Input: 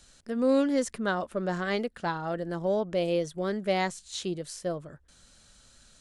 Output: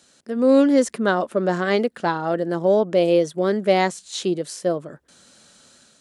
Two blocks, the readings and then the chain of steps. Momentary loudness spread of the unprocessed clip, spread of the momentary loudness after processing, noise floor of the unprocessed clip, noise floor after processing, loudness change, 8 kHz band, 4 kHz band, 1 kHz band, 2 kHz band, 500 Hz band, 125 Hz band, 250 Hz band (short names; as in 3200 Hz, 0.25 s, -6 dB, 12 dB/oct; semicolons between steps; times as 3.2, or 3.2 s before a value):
10 LU, 9 LU, -59 dBFS, -58 dBFS, +9.0 dB, +6.5 dB, +6.5 dB, +8.5 dB, +7.0 dB, +10.0 dB, +6.5 dB, +9.0 dB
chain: AGC gain up to 5 dB; HPF 270 Hz 12 dB/oct; low shelf 470 Hz +9 dB; gain +1.5 dB